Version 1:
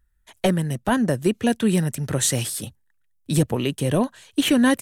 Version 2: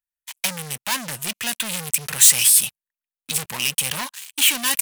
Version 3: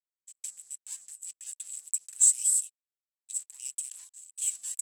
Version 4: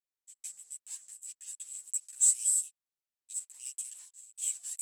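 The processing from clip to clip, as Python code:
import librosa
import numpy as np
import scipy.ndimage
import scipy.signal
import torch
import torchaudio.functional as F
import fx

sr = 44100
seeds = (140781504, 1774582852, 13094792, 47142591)

y1 = fx.graphic_eq_15(x, sr, hz=(160, 400, 1000, 2500), db=(10, -6, 11, 11))
y1 = fx.leveller(y1, sr, passes=5)
y1 = F.preemphasis(torch.from_numpy(y1), 0.97).numpy()
y1 = y1 * librosa.db_to_amplitude(-3.0)
y2 = fx.bandpass_q(y1, sr, hz=7800.0, q=15.0)
y2 = fx.quant_float(y2, sr, bits=4)
y3 = fx.chorus_voices(y2, sr, voices=4, hz=0.71, base_ms=13, depth_ms=4.7, mix_pct=55)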